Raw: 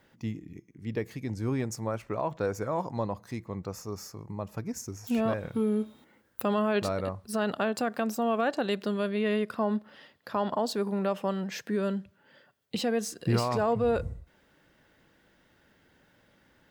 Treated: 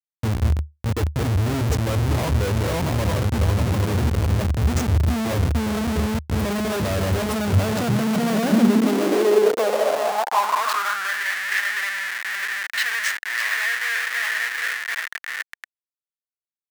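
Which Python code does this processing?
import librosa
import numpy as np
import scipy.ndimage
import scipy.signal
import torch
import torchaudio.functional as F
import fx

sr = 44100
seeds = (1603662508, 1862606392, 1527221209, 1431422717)

y = fx.reverse_delay_fb(x, sr, ms=367, feedback_pct=66, wet_db=-6.5)
y = fx.schmitt(y, sr, flips_db=-35.0)
y = fx.filter_sweep_highpass(y, sr, from_hz=75.0, to_hz=1800.0, start_s=7.34, end_s=11.24, q=7.1)
y = y * librosa.db_to_amplitude(6.0)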